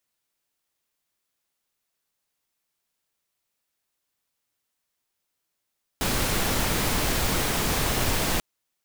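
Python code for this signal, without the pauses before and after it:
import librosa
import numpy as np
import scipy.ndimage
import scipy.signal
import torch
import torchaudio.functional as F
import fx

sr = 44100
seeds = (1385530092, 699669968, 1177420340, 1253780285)

y = fx.noise_colour(sr, seeds[0], length_s=2.39, colour='pink', level_db=-24.5)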